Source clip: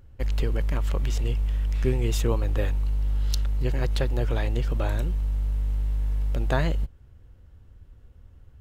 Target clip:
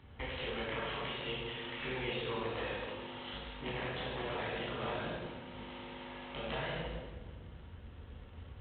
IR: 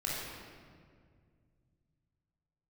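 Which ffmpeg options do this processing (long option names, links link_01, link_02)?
-filter_complex "[0:a]asettb=1/sr,asplit=3[link_01][link_02][link_03];[link_01]atrim=end=3.334[link_04];[link_02]atrim=start=3.33:end=5.55,asetpts=PTS-STARTPTS,afade=type=in:duration=0.004:curve=qsin,afade=type=out:start_time=2.216:duration=0.004:curve=qsin,aeval=exprs='(tanh(14.1*val(0)+0.45)-tanh(0.45))/14.1':channel_layout=same[link_05];[link_03]atrim=start=5.546[link_06];[link_04][link_05]acrossfade=duration=0.004:curve1=hsin:curve2=qsin[link_07];[link_07][link_06]acrossfade=duration=0.004:curve1=qsin:curve2=hsin,lowshelf=frequency=250:gain=-11,acrossover=split=220|460[link_08][link_09][link_10];[link_08]acompressor=threshold=-42dB:ratio=4[link_11];[link_09]acompressor=threshold=-52dB:ratio=4[link_12];[link_10]acompressor=threshold=-36dB:ratio=4[link_13];[link_11][link_12][link_13]amix=inputs=3:normalize=0,highshelf=frequency=2500:gain=4.5,acompressor=threshold=-43dB:ratio=6,highpass=55,bandreject=frequency=50:width_type=h:width=6,bandreject=frequency=100:width_type=h:width=6,bandreject=frequency=150:width_type=h:width=6,bandreject=frequency=200:width_type=h:width=6[link_14];[1:a]atrim=start_sample=2205,asetrate=66150,aresample=44100[link_15];[link_14][link_15]afir=irnorm=-1:irlink=0,volume=8.5dB" -ar 8000 -c:a adpcm_g726 -b:a 24k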